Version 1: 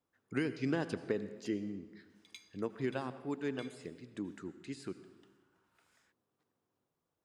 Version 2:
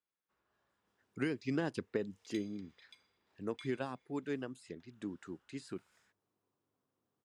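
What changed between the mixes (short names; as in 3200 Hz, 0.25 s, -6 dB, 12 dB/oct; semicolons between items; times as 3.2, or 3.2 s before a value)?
speech: entry +0.85 s; reverb: off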